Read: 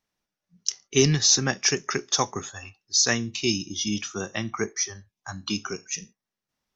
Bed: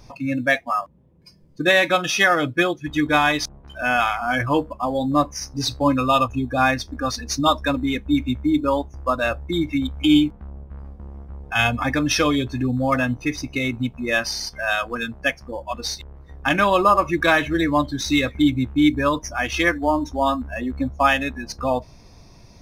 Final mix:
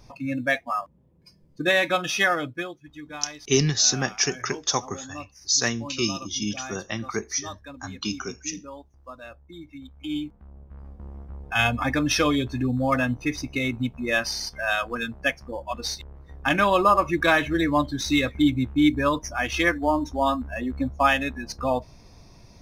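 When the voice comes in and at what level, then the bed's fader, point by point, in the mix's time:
2.55 s, -1.0 dB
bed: 2.28 s -4.5 dB
2.93 s -20 dB
9.74 s -20 dB
11.05 s -2.5 dB

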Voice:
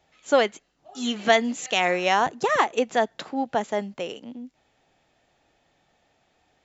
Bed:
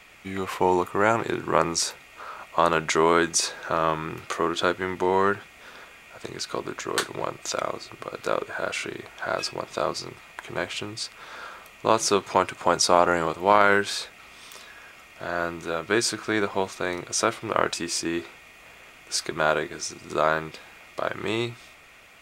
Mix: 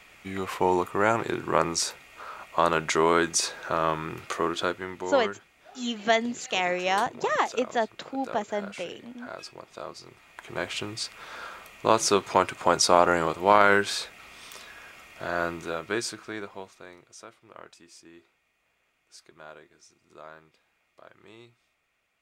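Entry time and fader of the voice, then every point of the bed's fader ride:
4.80 s, -4.0 dB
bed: 4.48 s -2 dB
5.27 s -12.5 dB
9.97 s -12.5 dB
10.73 s -0.5 dB
15.52 s -0.5 dB
17.27 s -23.5 dB

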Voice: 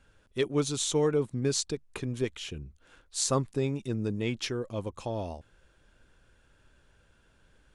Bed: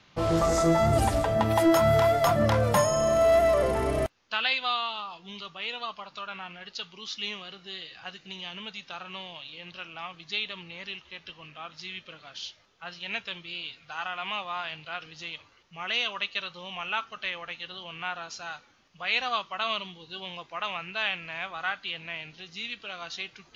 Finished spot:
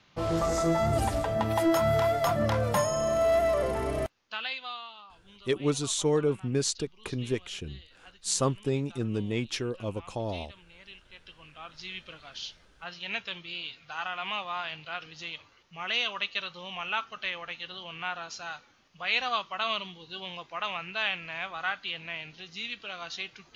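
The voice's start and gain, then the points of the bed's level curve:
5.10 s, +0.5 dB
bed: 4.08 s -3.5 dB
4.96 s -13.5 dB
10.62 s -13.5 dB
11.94 s -0.5 dB

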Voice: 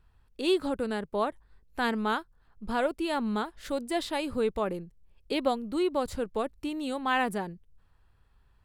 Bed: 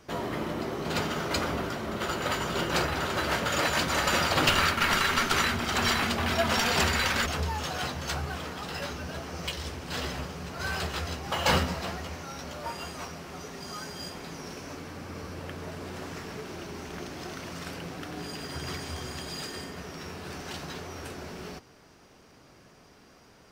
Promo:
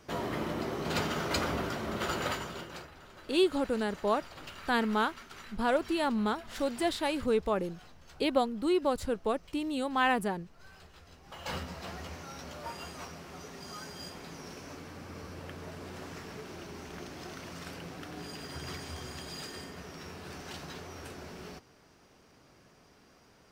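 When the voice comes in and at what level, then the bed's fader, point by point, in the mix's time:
2.90 s, 0.0 dB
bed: 2.23 s -2 dB
2.95 s -23.5 dB
10.97 s -23.5 dB
12.02 s -5 dB

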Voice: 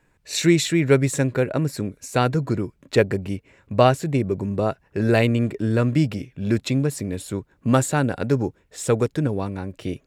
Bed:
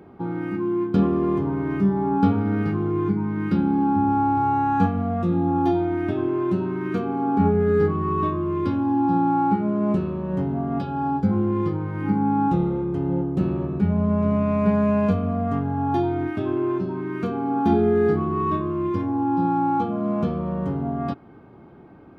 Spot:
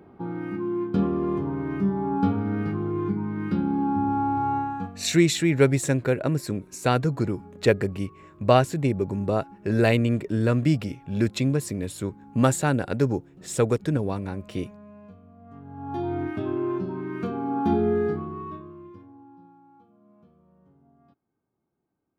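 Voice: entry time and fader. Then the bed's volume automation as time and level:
4.70 s, -2.0 dB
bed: 4.57 s -4 dB
5.21 s -27 dB
15.36 s -27 dB
16.13 s -3.5 dB
17.93 s -3.5 dB
19.62 s -33.5 dB

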